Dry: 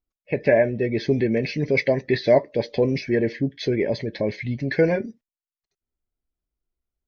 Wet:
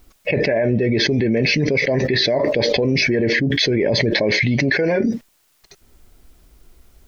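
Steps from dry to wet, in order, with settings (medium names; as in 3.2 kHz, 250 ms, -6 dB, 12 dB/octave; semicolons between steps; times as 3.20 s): 4.13–5.04 s: bass shelf 140 Hz -11.5 dB; level flattener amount 100%; trim -5 dB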